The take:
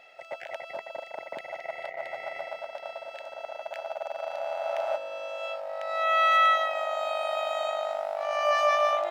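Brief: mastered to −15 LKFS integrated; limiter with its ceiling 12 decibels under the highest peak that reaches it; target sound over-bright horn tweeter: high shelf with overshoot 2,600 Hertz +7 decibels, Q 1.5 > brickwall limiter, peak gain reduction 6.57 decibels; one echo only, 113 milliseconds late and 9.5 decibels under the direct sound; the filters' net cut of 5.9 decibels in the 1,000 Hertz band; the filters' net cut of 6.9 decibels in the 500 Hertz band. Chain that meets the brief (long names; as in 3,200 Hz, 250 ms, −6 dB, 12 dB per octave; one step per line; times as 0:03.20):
parametric band 500 Hz −6.5 dB
parametric band 1,000 Hz −5.5 dB
brickwall limiter −28 dBFS
high shelf with overshoot 2,600 Hz +7 dB, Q 1.5
single-tap delay 113 ms −9.5 dB
level +22.5 dB
brickwall limiter −6.5 dBFS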